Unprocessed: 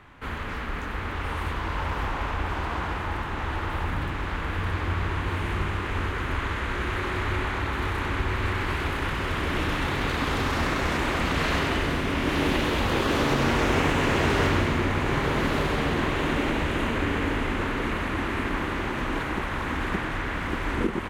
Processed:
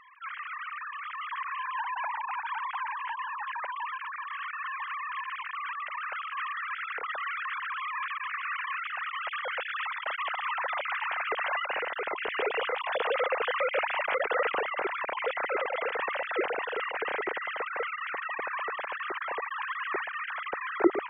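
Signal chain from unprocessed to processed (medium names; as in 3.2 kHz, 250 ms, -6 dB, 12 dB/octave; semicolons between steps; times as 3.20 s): formants replaced by sine waves; trim -6.5 dB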